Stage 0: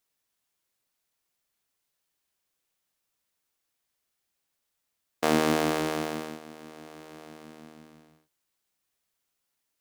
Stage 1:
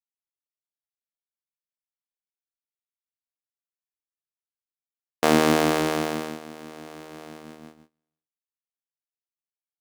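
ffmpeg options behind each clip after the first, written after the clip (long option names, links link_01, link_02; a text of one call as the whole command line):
ffmpeg -i in.wav -af "agate=range=-34dB:threshold=-47dB:ratio=16:detection=peak,volume=5dB" out.wav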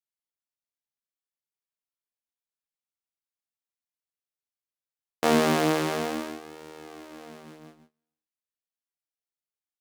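ffmpeg -i in.wav -af "flanger=delay=15:depth=7:speed=0.3" out.wav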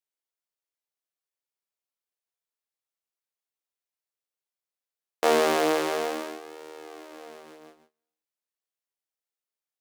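ffmpeg -i in.wav -af "lowshelf=frequency=280:width_type=q:width=1.5:gain=-12" out.wav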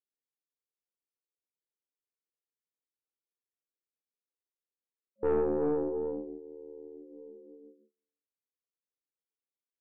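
ffmpeg -i in.wav -af "afftfilt=real='re*between(b*sr/4096,230,560)':imag='im*between(b*sr/4096,230,560)':win_size=4096:overlap=0.75,afreqshift=-20,aeval=exprs='(tanh(12.6*val(0)+0.45)-tanh(0.45))/12.6':channel_layout=same" out.wav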